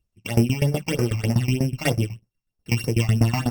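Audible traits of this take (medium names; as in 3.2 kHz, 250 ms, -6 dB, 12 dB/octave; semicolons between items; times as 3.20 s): a buzz of ramps at a fixed pitch in blocks of 16 samples; tremolo saw down 8.1 Hz, depth 90%; phasing stages 8, 3.2 Hz, lowest notch 440–3500 Hz; Opus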